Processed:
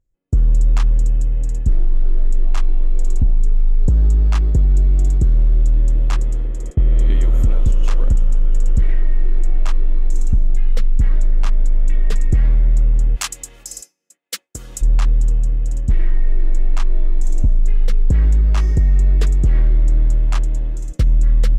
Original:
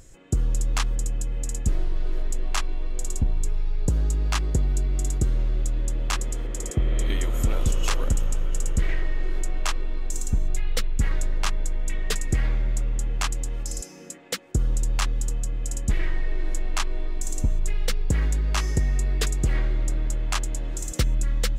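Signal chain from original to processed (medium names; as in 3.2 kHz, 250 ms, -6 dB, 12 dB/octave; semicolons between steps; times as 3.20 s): expander -24 dBFS; tilt EQ -2.5 dB/octave, from 13.15 s +3 dB/octave, from 14.81 s -2.5 dB/octave; peak limiter -7 dBFS, peak gain reduction 4 dB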